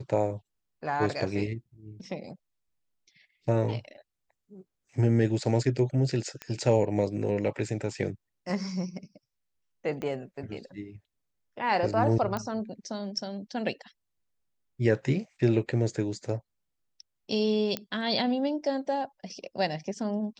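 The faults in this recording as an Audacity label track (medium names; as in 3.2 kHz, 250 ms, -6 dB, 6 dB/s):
6.420000	6.420000	pop -20 dBFS
10.020000	10.020000	pop -22 dBFS
12.370000	12.370000	pop -18 dBFS
17.770000	17.770000	pop -15 dBFS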